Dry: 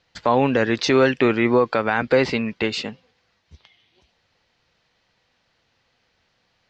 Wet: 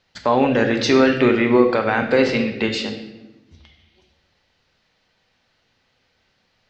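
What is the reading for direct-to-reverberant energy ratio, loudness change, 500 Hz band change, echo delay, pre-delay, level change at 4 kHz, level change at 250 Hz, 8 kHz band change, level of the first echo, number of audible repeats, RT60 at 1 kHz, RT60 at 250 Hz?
4.0 dB, +2.0 dB, +2.0 dB, no echo audible, 3 ms, +2.0 dB, +3.5 dB, can't be measured, no echo audible, no echo audible, 1.1 s, 1.6 s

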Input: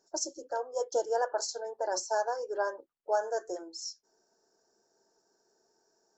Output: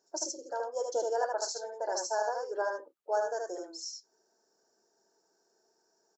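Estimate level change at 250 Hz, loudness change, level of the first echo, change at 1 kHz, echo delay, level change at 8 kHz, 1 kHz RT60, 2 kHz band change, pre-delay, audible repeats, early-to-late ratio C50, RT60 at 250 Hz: −1.5 dB, −1.0 dB, −3.5 dB, −0.5 dB, 76 ms, −0.5 dB, no reverb audible, 0.0 dB, no reverb audible, 1, no reverb audible, no reverb audible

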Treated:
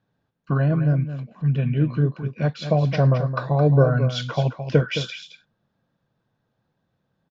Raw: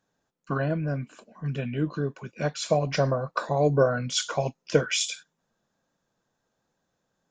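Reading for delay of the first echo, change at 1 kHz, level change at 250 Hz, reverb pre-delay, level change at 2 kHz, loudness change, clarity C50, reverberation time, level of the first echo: 217 ms, +1.0 dB, +7.0 dB, no reverb audible, +0.5 dB, +5.5 dB, no reverb audible, no reverb audible, −10.0 dB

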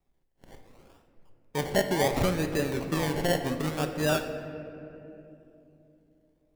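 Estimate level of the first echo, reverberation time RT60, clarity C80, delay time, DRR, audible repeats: no echo audible, 3.0 s, 8.5 dB, no echo audible, 5.5 dB, no echo audible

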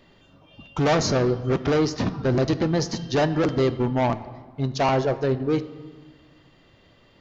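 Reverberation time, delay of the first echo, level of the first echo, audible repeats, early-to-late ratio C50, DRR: 1.3 s, no echo audible, no echo audible, no echo audible, 14.5 dB, 12.0 dB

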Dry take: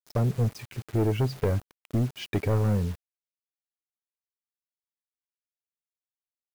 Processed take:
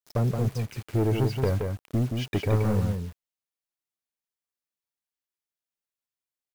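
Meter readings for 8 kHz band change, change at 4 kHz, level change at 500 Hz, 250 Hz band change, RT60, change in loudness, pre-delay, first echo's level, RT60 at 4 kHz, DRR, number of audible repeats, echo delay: +1.0 dB, +1.0 dB, +1.0 dB, +1.5 dB, no reverb audible, +0.5 dB, no reverb audible, −5.0 dB, no reverb audible, no reverb audible, 1, 173 ms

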